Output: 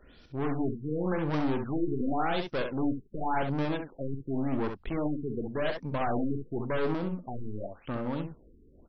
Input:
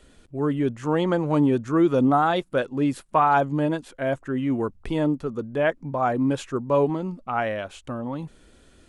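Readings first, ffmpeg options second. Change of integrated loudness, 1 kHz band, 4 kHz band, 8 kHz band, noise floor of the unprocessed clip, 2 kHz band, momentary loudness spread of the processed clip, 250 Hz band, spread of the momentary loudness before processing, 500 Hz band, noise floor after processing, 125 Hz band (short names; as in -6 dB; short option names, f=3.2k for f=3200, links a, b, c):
-8.5 dB, -10.5 dB, -5.5 dB, n/a, -55 dBFS, -7.5 dB, 8 LU, -7.5 dB, 11 LU, -8.5 dB, -58 dBFS, -6.0 dB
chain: -filter_complex "[0:a]highshelf=f=3.2k:g=9.5,aeval=exprs='(tanh(25.1*val(0)+0.6)-tanh(0.6))/25.1':c=same,asplit=2[a][b];[b]aecho=0:1:45|66:0.188|0.473[c];[a][c]amix=inputs=2:normalize=0,afftfilt=real='re*lt(b*sr/1024,440*pow(6100/440,0.5+0.5*sin(2*PI*0.9*pts/sr)))':imag='im*lt(b*sr/1024,440*pow(6100/440,0.5+0.5*sin(2*PI*0.9*pts/sr)))':win_size=1024:overlap=0.75"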